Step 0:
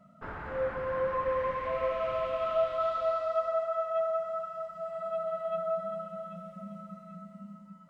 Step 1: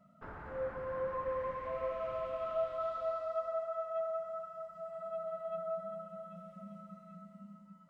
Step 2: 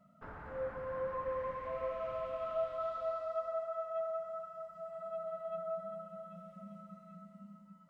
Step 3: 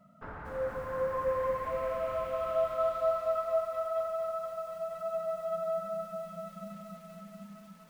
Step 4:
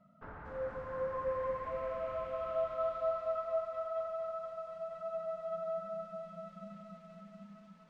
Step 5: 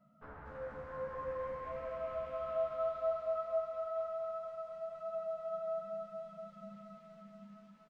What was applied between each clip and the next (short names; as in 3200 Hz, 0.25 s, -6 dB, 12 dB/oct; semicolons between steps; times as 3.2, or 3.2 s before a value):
dynamic EQ 3100 Hz, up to -6 dB, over -51 dBFS, Q 0.74; gain -6 dB
notch 360 Hz, Q 12; gain -1 dB
lo-fi delay 0.236 s, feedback 80%, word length 10-bit, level -9 dB; gain +5 dB
air absorption 120 m; gain -4.5 dB
doubler 14 ms -2.5 dB; gain -4.5 dB